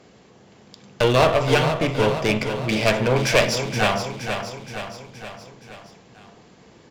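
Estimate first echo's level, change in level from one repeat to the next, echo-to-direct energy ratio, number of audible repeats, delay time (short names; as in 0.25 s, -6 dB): -8.0 dB, -5.0 dB, -6.5 dB, 5, 0.471 s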